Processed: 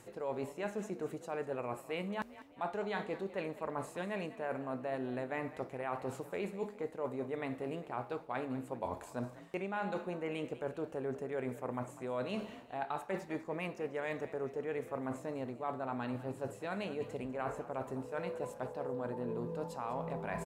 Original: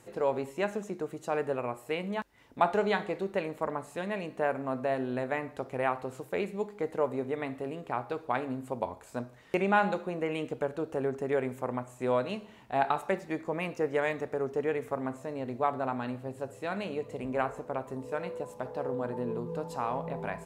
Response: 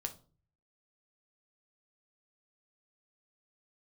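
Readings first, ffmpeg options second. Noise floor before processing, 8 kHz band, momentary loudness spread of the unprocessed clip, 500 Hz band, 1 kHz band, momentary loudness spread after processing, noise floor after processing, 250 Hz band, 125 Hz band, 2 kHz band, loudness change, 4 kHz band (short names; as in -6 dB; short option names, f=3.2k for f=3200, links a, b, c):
-54 dBFS, n/a, 8 LU, -7.0 dB, -8.5 dB, 3 LU, -54 dBFS, -5.5 dB, -4.5 dB, -7.5 dB, -7.0 dB, -6.5 dB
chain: -filter_complex "[0:a]areverse,acompressor=threshold=-41dB:ratio=6,areverse,asplit=5[a][b][c][d][e];[b]adelay=198,afreqshift=43,volume=-16dB[f];[c]adelay=396,afreqshift=86,volume=-22.9dB[g];[d]adelay=594,afreqshift=129,volume=-29.9dB[h];[e]adelay=792,afreqshift=172,volume=-36.8dB[i];[a][f][g][h][i]amix=inputs=5:normalize=0,volume=5dB"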